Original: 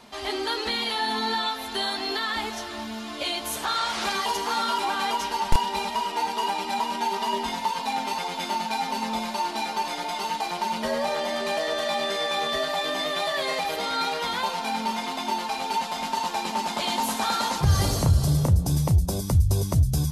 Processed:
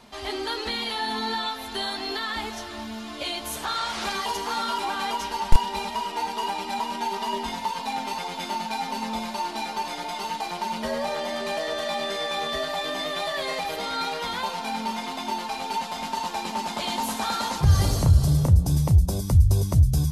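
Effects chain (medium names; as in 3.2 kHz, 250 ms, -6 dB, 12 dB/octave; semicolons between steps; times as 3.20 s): bass shelf 110 Hz +8 dB; trim -2 dB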